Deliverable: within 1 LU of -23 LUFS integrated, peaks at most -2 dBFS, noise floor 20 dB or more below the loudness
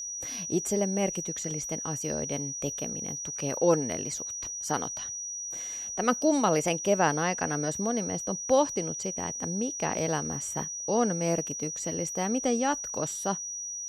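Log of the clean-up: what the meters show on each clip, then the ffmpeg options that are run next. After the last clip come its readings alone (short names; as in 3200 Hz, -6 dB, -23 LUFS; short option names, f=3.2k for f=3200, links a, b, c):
steady tone 5800 Hz; tone level -34 dBFS; loudness -29.0 LUFS; peak -11.0 dBFS; loudness target -23.0 LUFS
-> -af "bandreject=f=5.8k:w=30"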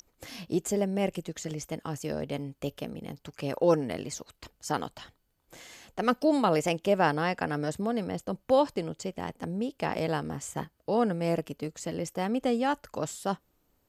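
steady tone none; loudness -30.5 LUFS; peak -11.5 dBFS; loudness target -23.0 LUFS
-> -af "volume=7.5dB"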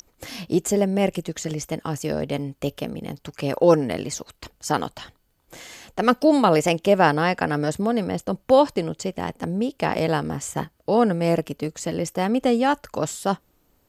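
loudness -23.0 LUFS; peak -4.0 dBFS; noise floor -65 dBFS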